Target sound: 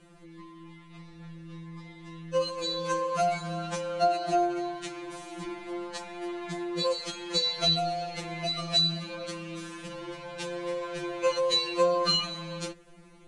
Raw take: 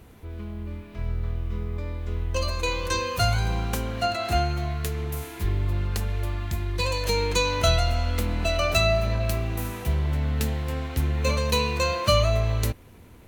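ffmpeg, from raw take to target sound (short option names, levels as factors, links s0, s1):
-filter_complex "[0:a]acrossover=split=8700[s0][s1];[s1]acompressor=threshold=0.002:ratio=4:attack=1:release=60[s2];[s0][s2]amix=inputs=2:normalize=0,aresample=22050,aresample=44100,afftfilt=real='re*2.83*eq(mod(b,8),0)':imag='im*2.83*eq(mod(b,8),0)':win_size=2048:overlap=0.75"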